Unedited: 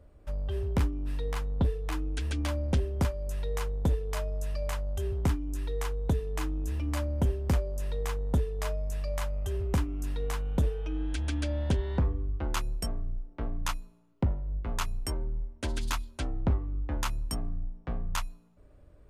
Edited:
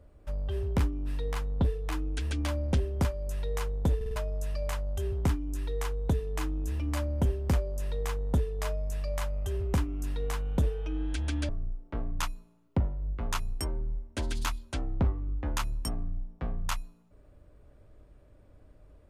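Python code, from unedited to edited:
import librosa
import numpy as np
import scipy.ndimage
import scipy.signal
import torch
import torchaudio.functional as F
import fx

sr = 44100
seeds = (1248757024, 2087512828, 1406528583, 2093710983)

y = fx.edit(x, sr, fx.stutter_over(start_s=3.96, slice_s=0.05, count=4),
    fx.cut(start_s=11.49, length_s=1.46), tone=tone)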